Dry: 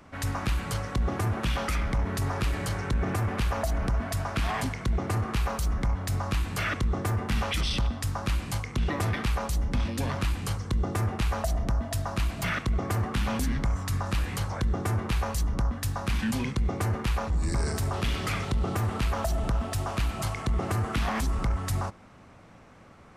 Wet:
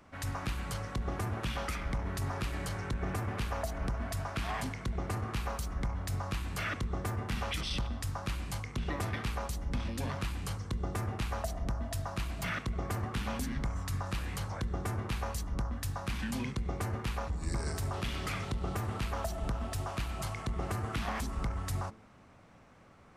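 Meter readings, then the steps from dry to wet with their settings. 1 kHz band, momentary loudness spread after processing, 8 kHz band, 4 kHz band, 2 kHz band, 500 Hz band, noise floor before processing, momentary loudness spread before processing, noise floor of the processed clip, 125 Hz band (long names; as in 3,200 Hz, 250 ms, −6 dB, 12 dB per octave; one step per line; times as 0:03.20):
−6.0 dB, 2 LU, −6.0 dB, −6.0 dB, −6.0 dB, −6.5 dB, −52 dBFS, 2 LU, −58 dBFS, −7.0 dB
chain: hum removal 54.95 Hz, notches 9
level −6 dB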